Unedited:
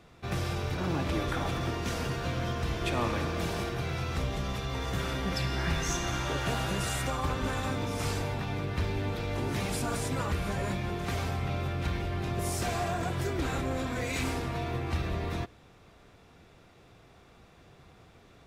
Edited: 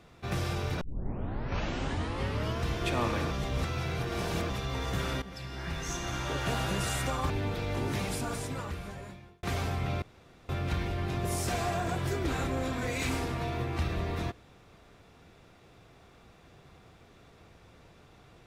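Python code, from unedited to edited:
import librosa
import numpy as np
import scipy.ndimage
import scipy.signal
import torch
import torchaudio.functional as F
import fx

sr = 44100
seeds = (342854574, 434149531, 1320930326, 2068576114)

y = fx.edit(x, sr, fx.tape_start(start_s=0.81, length_s=1.82),
    fx.reverse_span(start_s=3.31, length_s=1.19),
    fx.fade_in_from(start_s=5.22, length_s=1.37, floor_db=-15.0),
    fx.cut(start_s=7.3, length_s=1.61),
    fx.fade_out_span(start_s=9.48, length_s=1.56),
    fx.insert_room_tone(at_s=11.63, length_s=0.47), tone=tone)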